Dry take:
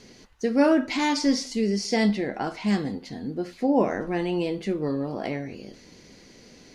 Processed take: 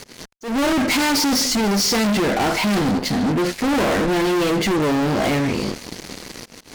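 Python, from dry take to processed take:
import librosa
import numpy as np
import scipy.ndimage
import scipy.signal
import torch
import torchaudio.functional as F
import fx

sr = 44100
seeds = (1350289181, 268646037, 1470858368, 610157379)

y = fx.fuzz(x, sr, gain_db=41.0, gate_db=-49.0)
y = fx.auto_swell(y, sr, attack_ms=191.0)
y = y * 10.0 ** (-4.0 / 20.0)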